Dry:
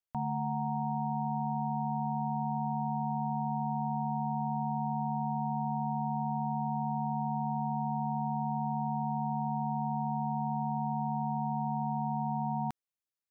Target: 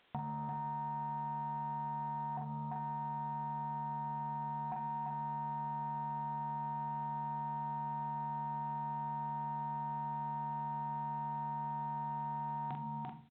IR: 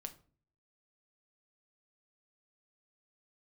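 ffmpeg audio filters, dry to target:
-filter_complex "[0:a]asettb=1/sr,asplit=3[s0][s1][s2];[s0]atrim=end=2.374[s3];[s1]atrim=start=2.37:end=4.72,asetpts=PTS-STARTPTS,afade=t=in:d=0.004:c=qsin,afade=t=out:st=2.346:d=0.004:c=qsin,lowpass=f=1100:w=0.5412,lowpass=f=1100:w=1.3066[s4];[s2]atrim=start=4.716[s5];[s3][s4]acrossfade=d=0.004:c1=hsin:c2=qsin[s6];[s6][s5]acrossfade=d=0.004:c1=qsin:c2=hsin[s7];[1:a]atrim=start_sample=2205[s8];[s7][s8]afir=irnorm=-1:irlink=0,acompressor=mode=upward:threshold=0.00158:ratio=2.5,aecho=1:1:343:0.596,asoftclip=type=tanh:threshold=0.0316,highpass=f=100:p=1,asplit=2[s9][s10];[s10]adelay=44,volume=0.631[s11];[s9][s11]amix=inputs=2:normalize=0,acompressor=threshold=0.00562:ratio=4,volume=2.24" -ar 8000 -c:a pcm_alaw

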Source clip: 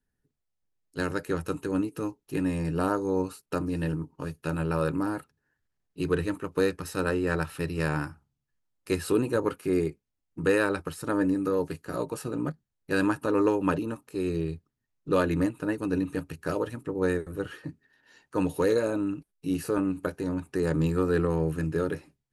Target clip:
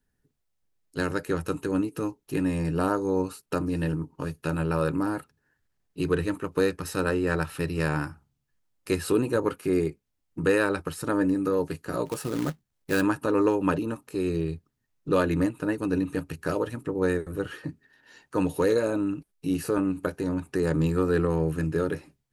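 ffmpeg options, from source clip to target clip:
-filter_complex "[0:a]asplit=2[s0][s1];[s1]acompressor=threshold=0.0158:ratio=6,volume=0.708[s2];[s0][s2]amix=inputs=2:normalize=0,asplit=3[s3][s4][s5];[s3]afade=t=out:st=12.05:d=0.02[s6];[s4]acrusher=bits=3:mode=log:mix=0:aa=0.000001,afade=t=in:st=12.05:d=0.02,afade=t=out:st=13:d=0.02[s7];[s5]afade=t=in:st=13:d=0.02[s8];[s6][s7][s8]amix=inputs=3:normalize=0"

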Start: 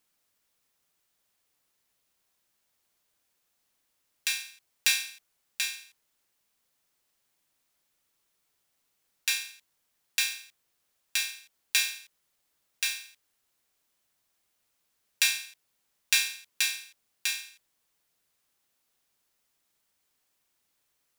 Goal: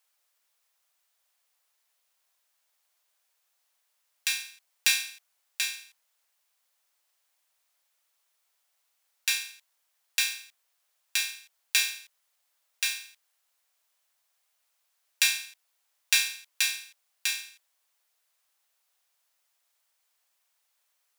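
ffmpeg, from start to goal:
-af "highpass=f=560:w=0.5412,highpass=f=560:w=1.3066,volume=1.12"

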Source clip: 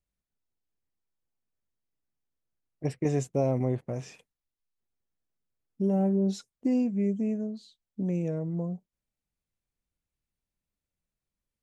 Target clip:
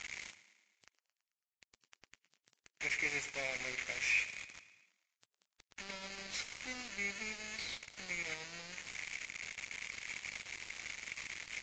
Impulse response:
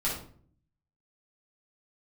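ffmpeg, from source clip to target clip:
-filter_complex "[0:a]aeval=exprs='val(0)+0.5*0.0188*sgn(val(0))':c=same,aemphasis=mode=production:type=75fm,asplit=2[s0][s1];[s1]acompressor=threshold=0.02:ratio=8,volume=1[s2];[s0][s2]amix=inputs=2:normalize=0,bandpass=f=2200:t=q:w=13:csg=0,aeval=exprs='val(0)+0.000158*(sin(2*PI*50*n/s)+sin(2*PI*2*50*n/s)/2+sin(2*PI*3*50*n/s)/3+sin(2*PI*4*50*n/s)/4+sin(2*PI*5*50*n/s)/5)':c=same,aeval=exprs='val(0)*gte(abs(val(0)),0.00211)':c=same,aeval=exprs='0.0133*(cos(1*acos(clip(val(0)/0.0133,-1,1)))-cos(1*PI/2))+0.000266*(cos(7*acos(clip(val(0)/0.0133,-1,1)))-cos(7*PI/2))':c=same,asplit=2[s3][s4];[s4]aecho=0:1:110|220|330|440|550|660:0.15|0.0883|0.0521|0.0307|0.0181|0.0107[s5];[s3][s5]amix=inputs=2:normalize=0,volume=5.62" -ar 16000 -c:a libvorbis -b:a 48k

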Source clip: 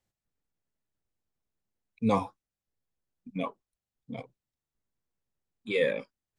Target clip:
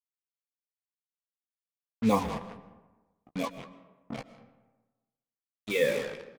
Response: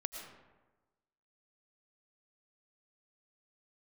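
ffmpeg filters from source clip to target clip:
-filter_complex "[0:a]asplit=5[s0][s1][s2][s3][s4];[s1]adelay=190,afreqshift=-39,volume=0.251[s5];[s2]adelay=380,afreqshift=-78,volume=0.0881[s6];[s3]adelay=570,afreqshift=-117,volume=0.0309[s7];[s4]adelay=760,afreqshift=-156,volume=0.0107[s8];[s0][s5][s6][s7][s8]amix=inputs=5:normalize=0,acrusher=bits=5:mix=0:aa=0.5,asplit=2[s9][s10];[1:a]atrim=start_sample=2205,adelay=14[s11];[s10][s11]afir=irnorm=-1:irlink=0,volume=0.398[s12];[s9][s12]amix=inputs=2:normalize=0"

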